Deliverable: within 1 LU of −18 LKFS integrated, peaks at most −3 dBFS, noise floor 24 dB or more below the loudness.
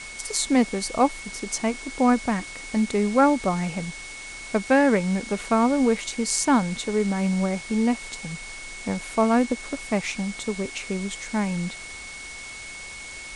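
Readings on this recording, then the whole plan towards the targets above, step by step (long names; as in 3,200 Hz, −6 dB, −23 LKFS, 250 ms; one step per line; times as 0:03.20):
interfering tone 2,200 Hz; level of the tone −38 dBFS; background noise floor −39 dBFS; target noise floor −48 dBFS; integrated loudness −24.0 LKFS; sample peak −6.0 dBFS; target loudness −18.0 LKFS
→ notch filter 2,200 Hz, Q 30
broadband denoise 9 dB, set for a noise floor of −39 dBFS
level +6 dB
brickwall limiter −3 dBFS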